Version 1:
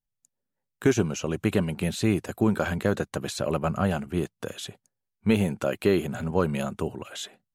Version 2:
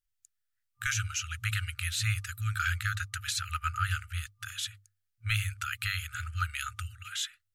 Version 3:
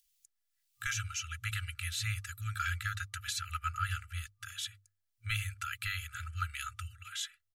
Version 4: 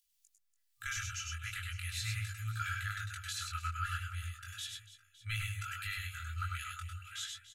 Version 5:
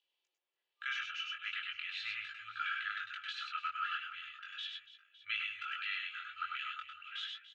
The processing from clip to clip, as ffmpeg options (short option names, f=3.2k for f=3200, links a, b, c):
-af "bandreject=f=50:t=h:w=6,bandreject=f=100:t=h:w=6,afftfilt=real='re*(1-between(b*sr/4096,110,1200))':imag='im*(1-between(b*sr/4096,110,1200))':win_size=4096:overlap=0.75,volume=2.5dB"
-filter_complex "[0:a]aecho=1:1:3:0.6,acrossover=split=380|1600|2300[a][b][c][d];[d]acompressor=mode=upward:threshold=-53dB:ratio=2.5[e];[a][b][c][e]amix=inputs=4:normalize=0,volume=-5.5dB"
-filter_complex "[0:a]asplit=2[a][b];[b]aecho=0:1:99|108|288|560:0.562|0.398|0.178|0.119[c];[a][c]amix=inputs=2:normalize=0,flanger=delay=18.5:depth=5.6:speed=0.39,volume=-1dB"
-af "highpass=f=350:w=0.5412,highpass=f=350:w=1.3066,equalizer=f=360:t=q:w=4:g=9,equalizer=f=530:t=q:w=4:g=7,equalizer=f=890:t=q:w=4:g=6,equalizer=f=1.4k:t=q:w=4:g=-4,equalizer=f=2k:t=q:w=4:g=-4,equalizer=f=3k:t=q:w=4:g=4,lowpass=f=3.3k:w=0.5412,lowpass=f=3.3k:w=1.3066,volume=4dB"